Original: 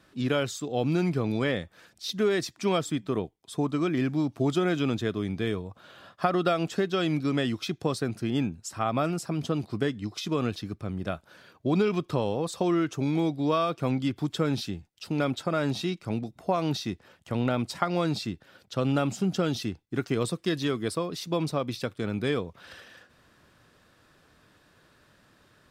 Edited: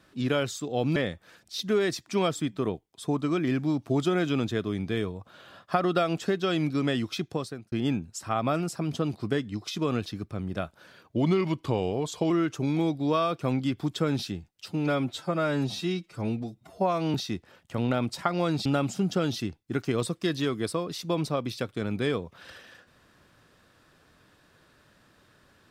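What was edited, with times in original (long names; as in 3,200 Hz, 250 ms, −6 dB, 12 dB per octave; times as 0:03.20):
0:00.96–0:01.46: remove
0:07.72–0:08.22: fade out
0:11.66–0:12.69: play speed 90%
0:15.07–0:16.71: time-stretch 1.5×
0:18.22–0:18.88: remove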